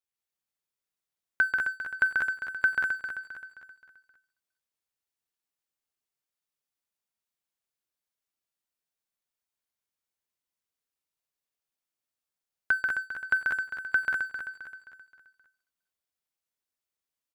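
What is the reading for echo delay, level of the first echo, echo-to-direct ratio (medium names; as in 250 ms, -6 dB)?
137 ms, -4.0 dB, 1.5 dB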